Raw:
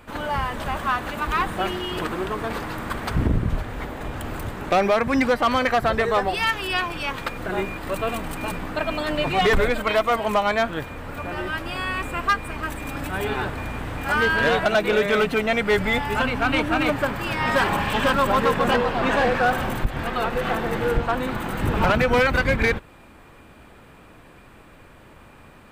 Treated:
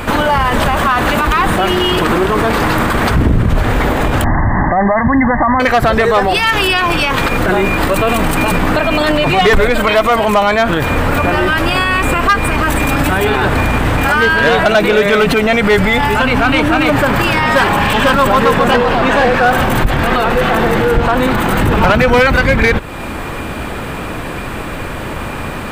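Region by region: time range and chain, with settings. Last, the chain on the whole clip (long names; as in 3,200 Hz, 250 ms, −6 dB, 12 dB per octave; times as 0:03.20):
0:04.24–0:05.60: linear-phase brick-wall low-pass 2,100 Hz + comb filter 1.1 ms, depth 74%
whole clip: downward compressor 1.5 to 1, threshold −38 dBFS; boost into a limiter +29 dB; level −3.5 dB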